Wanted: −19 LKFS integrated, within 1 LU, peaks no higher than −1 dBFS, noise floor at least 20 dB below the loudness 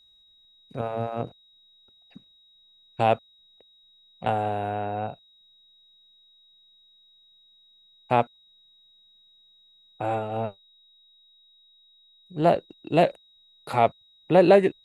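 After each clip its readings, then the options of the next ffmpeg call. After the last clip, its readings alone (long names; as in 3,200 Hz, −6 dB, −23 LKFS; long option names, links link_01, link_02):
interfering tone 3,800 Hz; level of the tone −56 dBFS; integrated loudness −25.0 LKFS; sample peak −5.5 dBFS; target loudness −19.0 LKFS
→ -af "bandreject=frequency=3800:width=30"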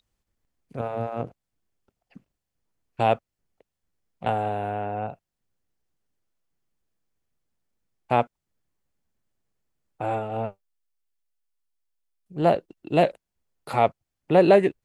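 interfering tone none found; integrated loudness −25.0 LKFS; sample peak −5.5 dBFS; target loudness −19.0 LKFS
→ -af "volume=6dB,alimiter=limit=-1dB:level=0:latency=1"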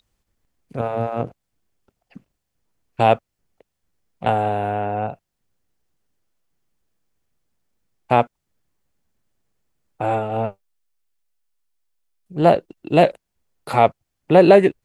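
integrated loudness −19.5 LKFS; sample peak −1.0 dBFS; background noise floor −78 dBFS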